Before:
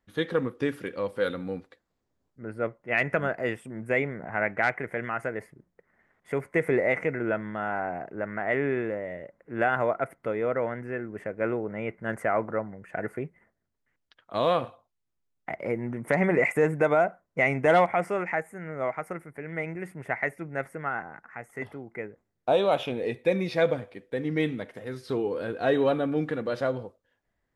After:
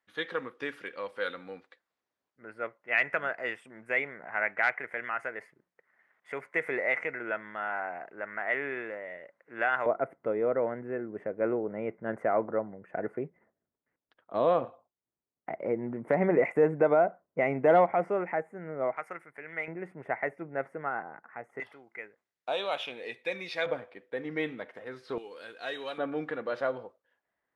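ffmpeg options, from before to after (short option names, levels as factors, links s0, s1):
-af "asetnsamples=n=441:p=0,asendcmd='9.86 bandpass f 470;18.97 bandpass f 1900;19.68 bandpass f 620;21.6 bandpass f 2900;23.66 bandpass f 1200;25.18 bandpass f 4900;25.98 bandpass f 1200',bandpass=f=2000:t=q:w=0.61:csg=0"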